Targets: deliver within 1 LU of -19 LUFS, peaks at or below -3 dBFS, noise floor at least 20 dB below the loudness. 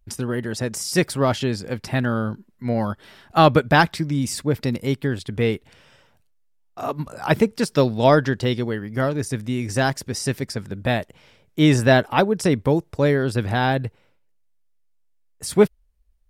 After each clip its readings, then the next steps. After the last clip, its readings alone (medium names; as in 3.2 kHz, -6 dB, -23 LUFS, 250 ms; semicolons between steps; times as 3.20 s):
loudness -21.5 LUFS; peak level -1.5 dBFS; loudness target -19.0 LUFS
-> trim +2.5 dB; peak limiter -3 dBFS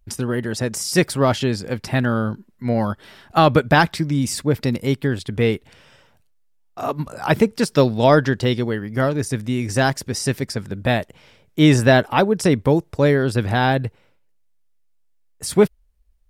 loudness -19.5 LUFS; peak level -3.0 dBFS; noise floor -60 dBFS